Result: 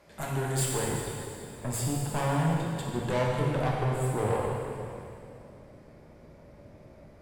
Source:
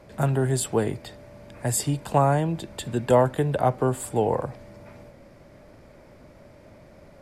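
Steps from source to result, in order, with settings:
tilt shelving filter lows −5 dB, about 750 Hz, from 0:00.88 lows +3 dB
tube saturation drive 24 dB, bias 0.75
dense smooth reverb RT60 2.6 s, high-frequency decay 1×, DRR −3 dB
level −3.5 dB

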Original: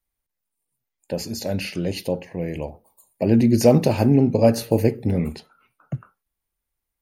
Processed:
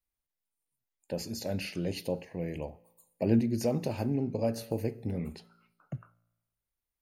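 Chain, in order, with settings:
0:03.39–0:05.95: downward compressor 1.5 to 1, threshold −29 dBFS, peak gain reduction 7.5 dB
tuned comb filter 57 Hz, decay 1 s, harmonics all, mix 30%
level −5.5 dB

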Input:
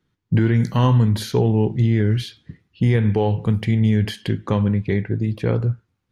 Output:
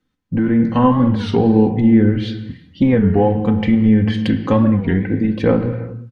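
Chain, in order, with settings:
treble cut that deepens with the level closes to 1,500 Hz, closed at −14.5 dBFS
comb filter 3.9 ms, depth 68%
automatic gain control
on a send at −7 dB: convolution reverb, pre-delay 4 ms
on the sum: wow of a warped record 33 1/3 rpm, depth 160 cents
level −2 dB

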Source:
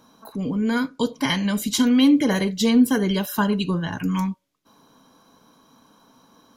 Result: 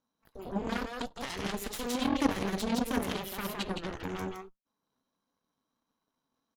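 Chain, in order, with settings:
0:02.36–0:02.90: low shelf with overshoot 140 Hz −13 dB, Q 3
brickwall limiter −14 dBFS, peak gain reduction 12 dB
on a send: single-tap delay 165 ms −3.5 dB
on the sum: flanger 1.5 Hz, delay 3.4 ms, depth 5.1 ms, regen +84%
harmonic generator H 3 −10 dB, 8 −22 dB, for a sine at −12.5 dBFS

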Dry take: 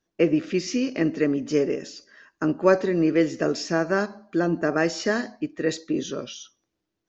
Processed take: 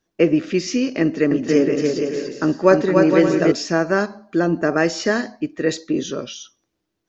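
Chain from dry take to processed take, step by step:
0:01.02–0:03.52: bouncing-ball delay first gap 290 ms, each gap 0.6×, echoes 5
level +4.5 dB

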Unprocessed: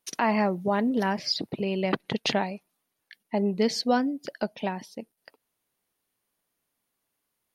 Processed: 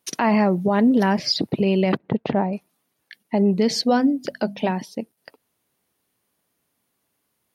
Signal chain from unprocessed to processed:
0:01.97–0:02.53: low-pass filter 1,100 Hz 12 dB per octave
0:03.81–0:04.71: mains-hum notches 50/100/150/200/250 Hz
high-pass filter 66 Hz
low-shelf EQ 410 Hz +5.5 dB
brickwall limiter −16 dBFS, peak gain reduction 6 dB
level +6 dB

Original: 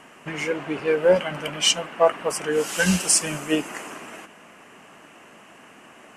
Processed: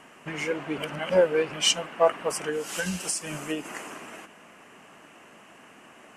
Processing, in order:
0:00.78–0:01.52: reverse
0:02.49–0:03.65: downward compressor 6 to 1, threshold −24 dBFS, peak gain reduction 10 dB
level −3 dB

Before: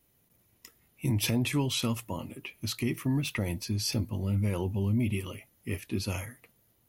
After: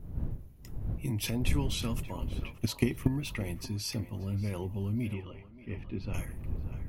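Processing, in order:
wind on the microphone 90 Hz −32 dBFS
0:02.20–0:03.08: transient designer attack +12 dB, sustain −2 dB
0:05.13–0:06.14: high-frequency loss of the air 330 metres
on a send: feedback echo with a band-pass in the loop 582 ms, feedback 48%, band-pass 1,100 Hz, level −10 dB
on the sum: level −5 dB

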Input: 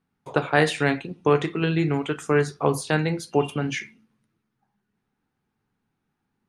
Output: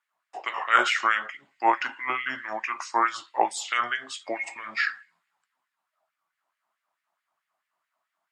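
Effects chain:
speed change −22%
auto-filter high-pass sine 4.6 Hz 770–2,000 Hz

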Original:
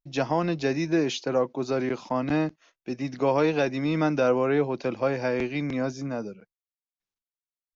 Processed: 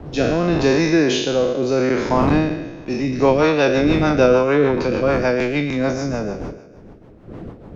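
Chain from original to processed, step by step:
peak hold with a decay on every bin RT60 1.26 s
wind on the microphone 360 Hz −36 dBFS
rotating-speaker cabinet horn 0.85 Hz, later 6.7 Hz, at 0:02.68
level +8 dB

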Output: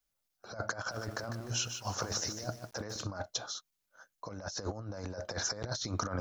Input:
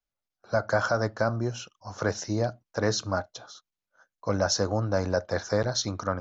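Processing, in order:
high-shelf EQ 5,300 Hz +9.5 dB
brickwall limiter −19 dBFS, peak gain reduction 9 dB
compressor whose output falls as the input rises −34 dBFS, ratio −0.5
0:00.75–0:03.02: feedback echo at a low word length 150 ms, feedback 35%, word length 8 bits, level −7 dB
level −2.5 dB

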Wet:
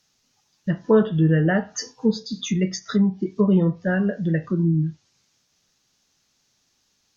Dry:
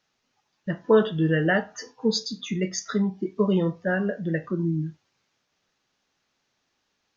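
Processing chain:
bass and treble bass +8 dB, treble +15 dB
treble cut that deepens with the level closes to 1,700 Hz, closed at −15 dBFS

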